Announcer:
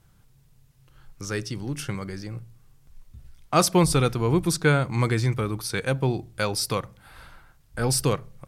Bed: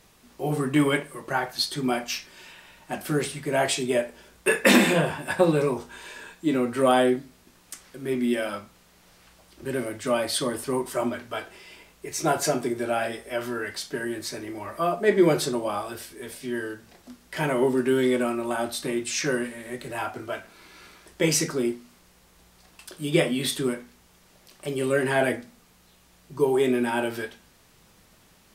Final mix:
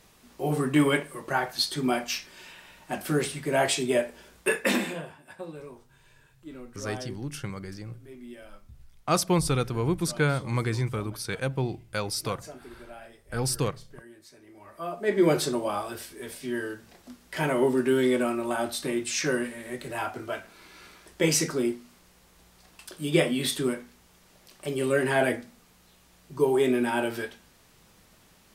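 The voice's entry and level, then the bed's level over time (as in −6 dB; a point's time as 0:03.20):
5.55 s, −4.5 dB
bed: 0:04.38 −0.5 dB
0:05.21 −19.5 dB
0:14.35 −19.5 dB
0:15.31 −1 dB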